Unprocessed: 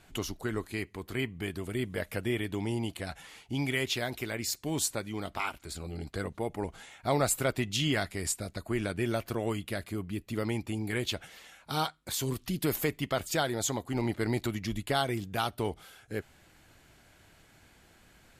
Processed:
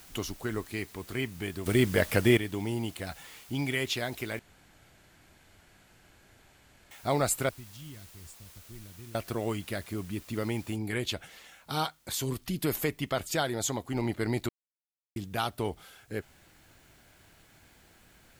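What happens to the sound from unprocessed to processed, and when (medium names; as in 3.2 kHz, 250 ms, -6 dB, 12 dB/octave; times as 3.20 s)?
1.66–2.37 s: gain +9 dB
4.39–6.91 s: room tone
7.49–9.15 s: amplifier tone stack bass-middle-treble 10-0-1
10.76 s: noise floor step -54 dB -68 dB
14.49–15.16 s: mute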